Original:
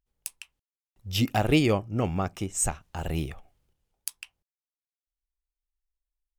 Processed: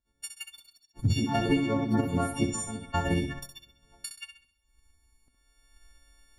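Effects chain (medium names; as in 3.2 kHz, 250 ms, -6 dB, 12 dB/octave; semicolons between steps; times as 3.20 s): partials quantised in pitch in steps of 4 st; recorder AGC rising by 17 dB/s; two-slope reverb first 0.53 s, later 1.6 s, DRR 15.5 dB; ever faster or slower copies 212 ms, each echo +4 st, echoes 3, each echo -6 dB; peaking EQ 250 Hz +15 dB 0.26 oct; transient shaper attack +8 dB, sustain -5 dB; compression 5:1, threshold -23 dBFS, peak gain reduction 15 dB; 2.06–2.67 s: word length cut 10-bit, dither none; low-pass 8.4 kHz 12 dB/octave; treble shelf 3.4 kHz -11.5 dB; on a send: flutter echo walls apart 11.2 m, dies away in 0.48 s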